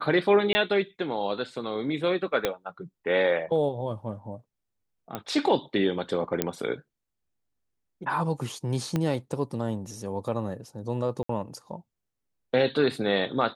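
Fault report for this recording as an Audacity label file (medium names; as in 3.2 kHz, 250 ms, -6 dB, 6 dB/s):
0.530000	0.550000	dropout 20 ms
2.450000	2.450000	pop -10 dBFS
5.150000	5.150000	pop -17 dBFS
6.420000	6.420000	pop -8 dBFS
8.960000	8.960000	pop -14 dBFS
11.230000	11.290000	dropout 64 ms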